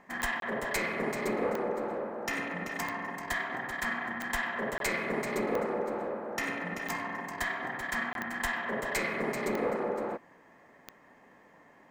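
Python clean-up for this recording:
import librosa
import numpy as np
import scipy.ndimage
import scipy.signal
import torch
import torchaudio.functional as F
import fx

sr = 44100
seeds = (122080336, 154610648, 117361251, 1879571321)

y = fx.fix_declick_ar(x, sr, threshold=10.0)
y = fx.fix_interpolate(y, sr, at_s=(0.4, 4.78, 8.13), length_ms=22.0)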